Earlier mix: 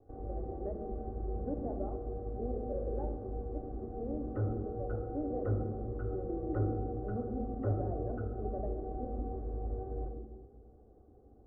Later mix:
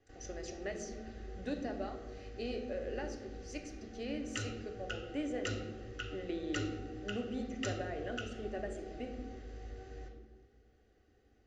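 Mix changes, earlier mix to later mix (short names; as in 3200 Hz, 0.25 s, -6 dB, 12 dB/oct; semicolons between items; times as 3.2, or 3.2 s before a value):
background -9.5 dB; master: remove steep low-pass 1000 Hz 36 dB/oct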